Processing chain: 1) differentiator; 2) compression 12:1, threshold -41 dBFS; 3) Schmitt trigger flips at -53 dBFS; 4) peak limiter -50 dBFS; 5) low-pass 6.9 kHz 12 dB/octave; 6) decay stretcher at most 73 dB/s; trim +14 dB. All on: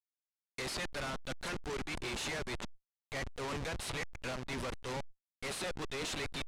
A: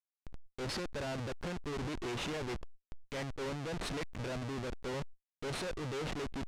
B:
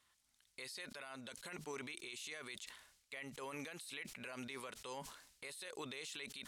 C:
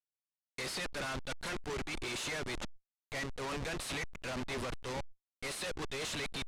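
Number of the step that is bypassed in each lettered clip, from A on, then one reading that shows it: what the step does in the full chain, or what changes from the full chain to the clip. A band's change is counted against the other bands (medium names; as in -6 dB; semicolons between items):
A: 1, 8 kHz band -5.5 dB; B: 3, crest factor change +3.5 dB; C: 2, mean gain reduction 4.5 dB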